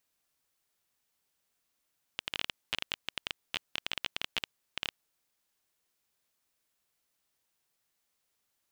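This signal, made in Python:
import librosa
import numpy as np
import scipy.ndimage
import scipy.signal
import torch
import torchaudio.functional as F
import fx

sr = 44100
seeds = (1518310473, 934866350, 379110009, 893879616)

y = fx.geiger_clicks(sr, seeds[0], length_s=2.74, per_s=15.0, level_db=-14.0)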